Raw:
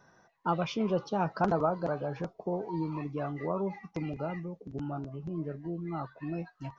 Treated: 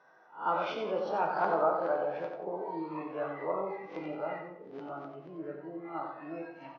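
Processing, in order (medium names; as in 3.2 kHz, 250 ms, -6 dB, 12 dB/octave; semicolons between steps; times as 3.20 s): reverse spectral sustain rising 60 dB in 0.32 s; high-pass 470 Hz 12 dB/octave; distance through air 270 m; feedback delay 91 ms, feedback 27%, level -7 dB; simulated room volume 96 m³, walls mixed, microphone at 0.54 m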